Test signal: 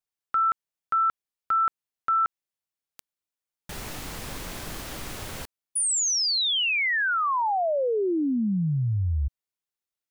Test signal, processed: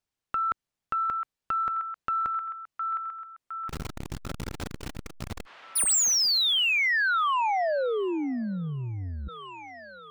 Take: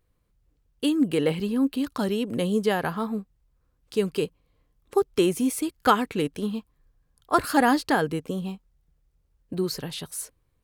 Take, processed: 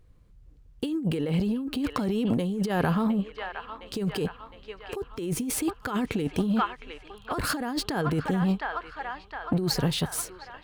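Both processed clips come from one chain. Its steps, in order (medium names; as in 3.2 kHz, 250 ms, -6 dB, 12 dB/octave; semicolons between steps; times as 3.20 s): median filter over 3 samples; bass shelf 290 Hz +9 dB; on a send: feedback echo behind a band-pass 711 ms, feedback 55%, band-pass 1.6 kHz, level -12 dB; on the sum: compressor with a negative ratio -26 dBFS, ratio -1; transformer saturation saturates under 390 Hz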